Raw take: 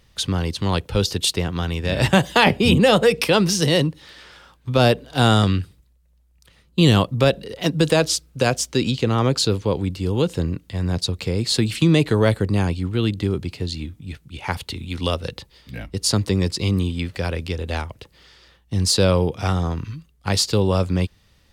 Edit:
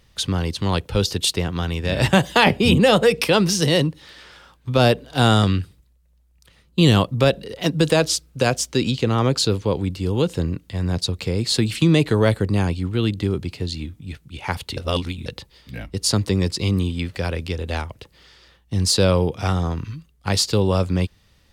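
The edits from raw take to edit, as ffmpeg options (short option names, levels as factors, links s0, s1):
-filter_complex "[0:a]asplit=3[s0][s1][s2];[s0]atrim=end=14.772[s3];[s1]atrim=start=14.768:end=15.262,asetpts=PTS-STARTPTS,areverse[s4];[s2]atrim=start=15.258[s5];[s3][s4]acrossfade=d=0.004:c1=hsin:c2=hsin[s6];[s6][s5]acrossfade=d=0.004:c1=hsin:c2=hsin"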